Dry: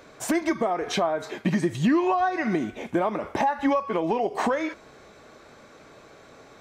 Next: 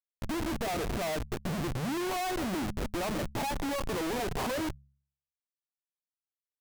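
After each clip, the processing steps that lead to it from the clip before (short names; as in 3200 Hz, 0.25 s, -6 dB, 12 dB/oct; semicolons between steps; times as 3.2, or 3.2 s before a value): median filter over 15 samples; Schmitt trigger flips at -32 dBFS; de-hum 69.1 Hz, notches 3; gain -5 dB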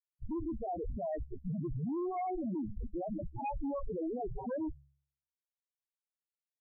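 loudest bins only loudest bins 4; gain -1.5 dB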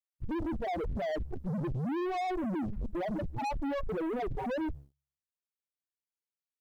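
sample leveller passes 3; gain -1.5 dB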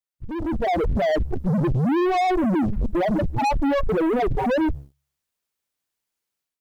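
AGC gain up to 11.5 dB; gain +1 dB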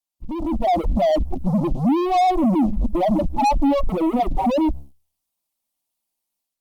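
fixed phaser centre 430 Hz, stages 6; gain +4.5 dB; Opus 48 kbps 48000 Hz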